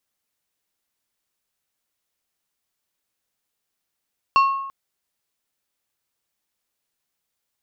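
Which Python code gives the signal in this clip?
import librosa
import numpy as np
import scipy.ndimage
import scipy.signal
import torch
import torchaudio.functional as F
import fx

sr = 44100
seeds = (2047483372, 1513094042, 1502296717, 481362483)

y = fx.strike_glass(sr, length_s=0.34, level_db=-10.5, body='plate', hz=1090.0, decay_s=0.93, tilt_db=9.5, modes=5)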